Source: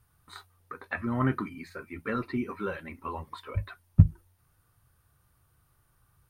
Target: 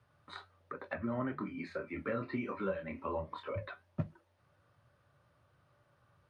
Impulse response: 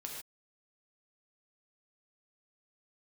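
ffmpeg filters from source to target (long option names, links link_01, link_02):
-filter_complex "[0:a]highpass=120,lowpass=3800,equalizer=frequency=580:width_type=o:width=0.2:gain=15,acrossover=split=220|640[link_01][link_02][link_03];[link_01]acompressor=threshold=-42dB:ratio=4[link_04];[link_02]acompressor=threshold=-42dB:ratio=4[link_05];[link_03]acompressor=threshold=-44dB:ratio=4[link_06];[link_04][link_05][link_06]amix=inputs=3:normalize=0,flanger=delay=6:depth=5.8:regen=-72:speed=1.2:shape=triangular,asettb=1/sr,asplit=3[link_07][link_08][link_09];[link_07]atrim=end=1.364[link_10];[link_08]atrim=start=1.36:end=3.49,asetpts=PTS-STARTPTS,afade=type=in:duration=0.004:curve=qsin,afade=type=out:start_time=2.126:duration=0.004:curve=qsin,asplit=2[link_11][link_12];[link_12]adelay=26,volume=-6dB[link_13];[link_11][link_13]amix=inputs=2:normalize=0,atrim=end_sample=93933[link_14];[link_09]atrim=start=3.486[link_15];[link_10][link_14]acrossfade=duration=0.004:curve1=hsin:curve2=qsin[link_16];[link_16][link_15]acrossfade=duration=0.004:curve1=qsin:curve2=hsin,volume=5.5dB"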